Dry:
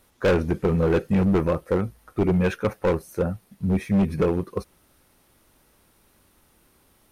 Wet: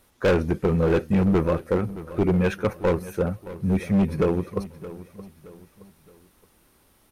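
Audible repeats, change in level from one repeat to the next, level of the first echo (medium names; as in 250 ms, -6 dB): 3, -8.0 dB, -16.0 dB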